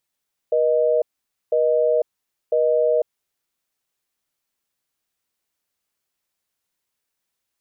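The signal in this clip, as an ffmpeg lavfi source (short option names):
-f lavfi -i "aevalsrc='0.126*(sin(2*PI*480*t)+sin(2*PI*620*t))*clip(min(mod(t,1),0.5-mod(t,1))/0.005,0,1)':d=2.82:s=44100"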